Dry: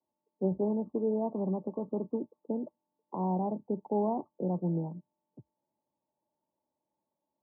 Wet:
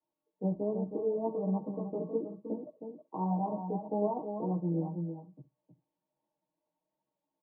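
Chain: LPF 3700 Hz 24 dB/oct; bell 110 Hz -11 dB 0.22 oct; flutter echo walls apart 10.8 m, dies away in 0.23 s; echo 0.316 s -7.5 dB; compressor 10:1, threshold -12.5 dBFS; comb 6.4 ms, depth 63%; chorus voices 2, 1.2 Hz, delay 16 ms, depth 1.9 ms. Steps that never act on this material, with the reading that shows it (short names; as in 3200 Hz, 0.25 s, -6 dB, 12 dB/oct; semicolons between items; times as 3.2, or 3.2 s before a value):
LPF 3700 Hz: input band ends at 1100 Hz; compressor, threshold -12.5 dBFS: input peak -18.5 dBFS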